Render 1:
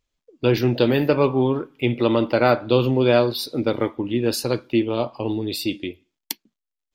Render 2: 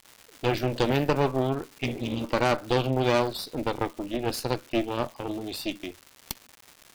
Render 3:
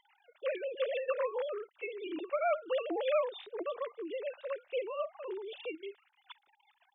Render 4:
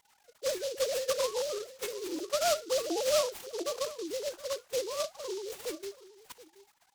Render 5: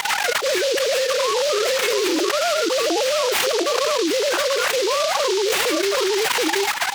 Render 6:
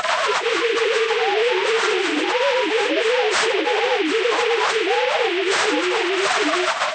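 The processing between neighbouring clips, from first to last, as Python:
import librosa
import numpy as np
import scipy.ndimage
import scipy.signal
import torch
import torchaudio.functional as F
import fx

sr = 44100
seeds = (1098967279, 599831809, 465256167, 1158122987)

y1 = fx.spec_repair(x, sr, seeds[0], start_s=1.86, length_s=0.35, low_hz=260.0, high_hz=2100.0, source='both')
y1 = fx.cheby_harmonics(y1, sr, harmonics=(6,), levels_db=(-13,), full_scale_db=-3.0)
y1 = fx.dmg_crackle(y1, sr, seeds[1], per_s=350.0, level_db=-29.0)
y1 = F.gain(torch.from_numpy(y1), -7.5).numpy()
y2 = fx.sine_speech(y1, sr)
y2 = F.gain(torch.from_numpy(y2), -8.5).numpy()
y3 = y2 + 10.0 ** (-17.5 / 20.0) * np.pad(y2, (int(727 * sr / 1000.0), 0))[:len(y2)]
y3 = fx.noise_mod_delay(y3, sr, seeds[2], noise_hz=4700.0, depth_ms=0.1)
y3 = F.gain(torch.from_numpy(y3), 2.5).numpy()
y4 = scipy.signal.sosfilt(scipy.signal.butter(2, 92.0, 'highpass', fs=sr, output='sos'), y3)
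y4 = fx.peak_eq(y4, sr, hz=1900.0, db=12.0, octaves=2.9)
y4 = fx.env_flatten(y4, sr, amount_pct=100)
y4 = F.gain(torch.from_numpy(y4), -2.0).numpy()
y5 = fx.partial_stretch(y4, sr, pct=79)
y5 = fx.peak_eq(y5, sr, hz=340.0, db=-6.0, octaves=0.21)
y5 = F.gain(torch.from_numpy(y5), 3.0).numpy()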